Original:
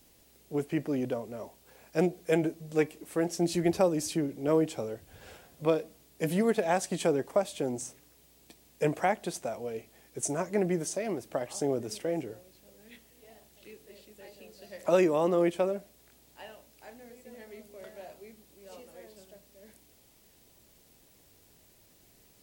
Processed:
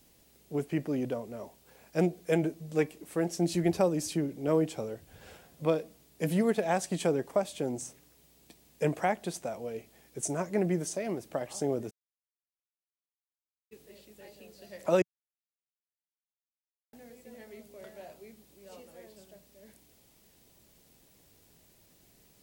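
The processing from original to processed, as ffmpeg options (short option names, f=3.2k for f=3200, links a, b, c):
-filter_complex "[0:a]asplit=3[a][b][c];[a]afade=t=out:st=11.89:d=0.02[d];[b]acrusher=bits=2:mix=0:aa=0.5,afade=t=in:st=11.89:d=0.02,afade=t=out:st=13.71:d=0.02[e];[c]afade=t=in:st=13.71:d=0.02[f];[d][e][f]amix=inputs=3:normalize=0,asplit=3[g][h][i];[g]atrim=end=15.02,asetpts=PTS-STARTPTS,afade=t=out:st=15.016:d=0.004:c=hsin[j];[h]atrim=start=15.02:end=16.93,asetpts=PTS-STARTPTS,volume=0[k];[i]atrim=start=16.93,asetpts=PTS-STARTPTS,afade=t=in:d=0.004:c=hsin[l];[j][k][l]concat=n=3:v=0:a=1,equalizer=f=170:t=o:w=0.77:g=3.5,volume=-1.5dB"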